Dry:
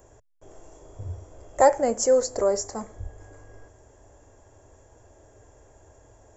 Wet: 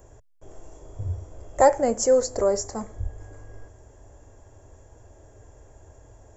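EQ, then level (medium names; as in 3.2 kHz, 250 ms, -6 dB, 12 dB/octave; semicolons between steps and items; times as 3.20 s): bass shelf 170 Hz +7 dB; 0.0 dB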